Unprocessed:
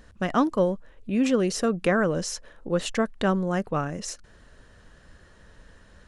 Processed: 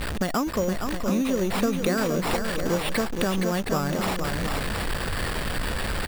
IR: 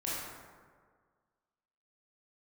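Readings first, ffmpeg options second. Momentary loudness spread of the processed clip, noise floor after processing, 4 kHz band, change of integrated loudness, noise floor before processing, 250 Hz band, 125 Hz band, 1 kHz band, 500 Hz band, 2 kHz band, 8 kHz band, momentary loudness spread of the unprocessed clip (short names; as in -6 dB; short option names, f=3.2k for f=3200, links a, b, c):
5 LU, -30 dBFS, +6.0 dB, -0.5 dB, -54 dBFS, +0.5 dB, +3.0 dB, +1.5 dB, -0.5 dB, +3.5 dB, +2.0 dB, 12 LU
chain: -filter_complex "[0:a]aeval=exprs='val(0)+0.5*0.0316*sgn(val(0))':c=same,acompressor=threshold=-29dB:ratio=6,asplit=2[a][b];[b]aecho=0:1:468|716:0.501|0.355[c];[a][c]amix=inputs=2:normalize=0,acrusher=samples=7:mix=1:aa=0.000001,volume=6dB"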